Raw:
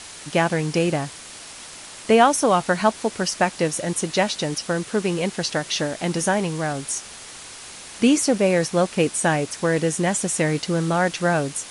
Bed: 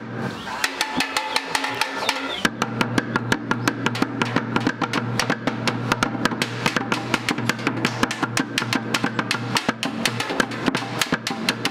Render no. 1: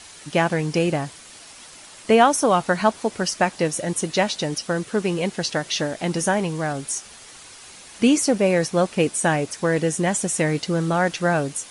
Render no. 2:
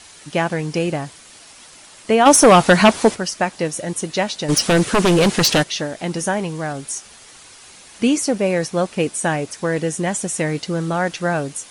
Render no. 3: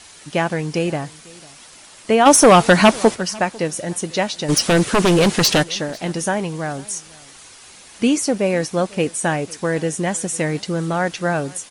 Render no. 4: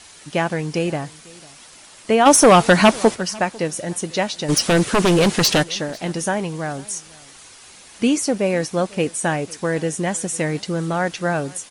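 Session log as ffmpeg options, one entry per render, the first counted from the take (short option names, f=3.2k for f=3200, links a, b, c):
-af "afftdn=nr=6:nf=-40"
-filter_complex "[0:a]asplit=3[a][b][c];[a]afade=t=out:st=2.25:d=0.02[d];[b]aeval=exprs='0.631*sin(PI/2*2.51*val(0)/0.631)':c=same,afade=t=in:st=2.25:d=0.02,afade=t=out:st=3.14:d=0.02[e];[c]afade=t=in:st=3.14:d=0.02[f];[d][e][f]amix=inputs=3:normalize=0,asplit=3[g][h][i];[g]afade=t=out:st=4.48:d=0.02[j];[h]aeval=exprs='0.316*sin(PI/2*3.16*val(0)/0.316)':c=same,afade=t=in:st=4.48:d=0.02,afade=t=out:st=5.62:d=0.02[k];[i]afade=t=in:st=5.62:d=0.02[l];[j][k][l]amix=inputs=3:normalize=0"
-af "aecho=1:1:498:0.0668"
-af "volume=-1dB"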